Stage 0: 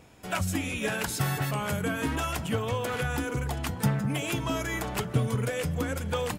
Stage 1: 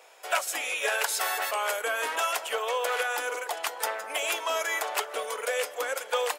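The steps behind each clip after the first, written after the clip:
Butterworth high-pass 480 Hz 36 dB per octave
level +4.5 dB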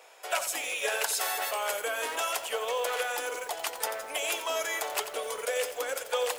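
dynamic equaliser 1,400 Hz, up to −5 dB, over −41 dBFS, Q 0.74
feedback echo at a low word length 88 ms, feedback 35%, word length 7 bits, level −10 dB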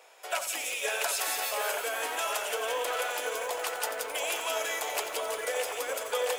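echo with a time of its own for lows and highs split 2,200 Hz, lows 726 ms, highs 175 ms, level −3.5 dB
level −2 dB

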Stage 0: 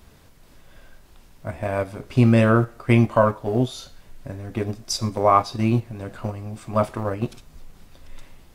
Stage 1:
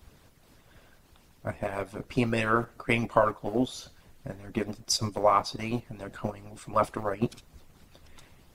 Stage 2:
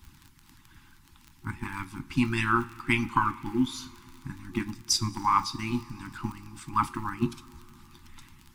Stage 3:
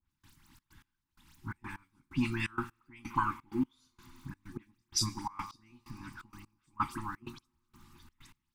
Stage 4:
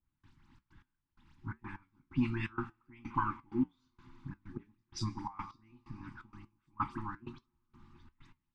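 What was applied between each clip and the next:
harmonic and percussive parts rebalanced harmonic −17 dB
coupled-rooms reverb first 0.27 s, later 3.8 s, from −18 dB, DRR 11.5 dB; surface crackle 30 per second −37 dBFS; brick-wall band-stop 360–800 Hz; level +1.5 dB
all-pass dispersion highs, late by 78 ms, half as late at 2,900 Hz; gate pattern "..xxx.x." 128 BPM −24 dB; level −5.5 dB
flanger 1.2 Hz, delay 5.8 ms, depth 3.2 ms, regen −74%; head-to-tape spacing loss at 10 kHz 26 dB; level +4.5 dB

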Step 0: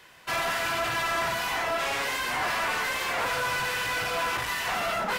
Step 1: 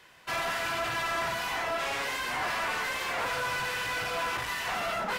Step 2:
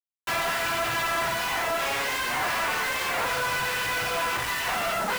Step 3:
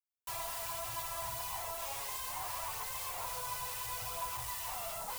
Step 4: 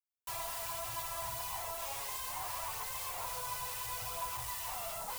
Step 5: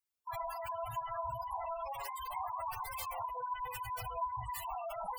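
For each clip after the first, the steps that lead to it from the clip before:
high-shelf EQ 10,000 Hz −4 dB; level −3 dB
in parallel at +3 dB: downward compressor, threshold −40 dBFS, peak gain reduction 11.5 dB; on the sum: bit-depth reduction 6 bits, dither none; level +1 dB
drawn EQ curve 110 Hz 0 dB, 230 Hz −20 dB, 1,000 Hz −3 dB, 1,500 Hz −17 dB, 9,100 Hz +3 dB, 16,000 Hz +6 dB; phase shifter 0.71 Hz, delay 5 ms, feedback 27%; level −8 dB
no processing that can be heard
gate on every frequency bin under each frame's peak −10 dB strong; level +5 dB

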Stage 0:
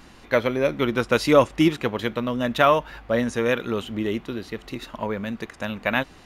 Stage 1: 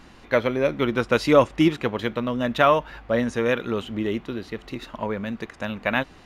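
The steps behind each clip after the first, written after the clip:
high-shelf EQ 6,900 Hz −8 dB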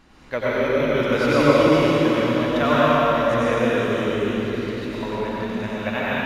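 dense smooth reverb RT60 4.1 s, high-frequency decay 1×, pre-delay 80 ms, DRR −9.5 dB
level −6.5 dB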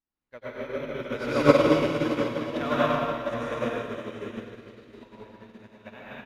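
on a send: single-tap delay 714 ms −8 dB
on the sum: expander for the loud parts 2.5 to 1, over −39 dBFS

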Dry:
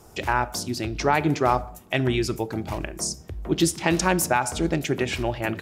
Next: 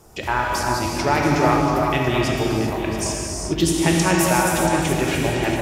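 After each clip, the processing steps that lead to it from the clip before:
on a send: delay that swaps between a low-pass and a high-pass 341 ms, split 1,200 Hz, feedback 50%, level −4.5 dB
on the sum: reverb whose tail is shaped and stops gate 440 ms flat, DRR −2 dB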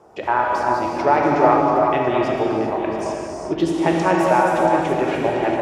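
resonant band-pass 660 Hz, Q 0.94
level +5.5 dB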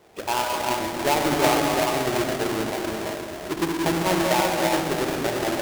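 each half-wave held at its own peak
level −9 dB

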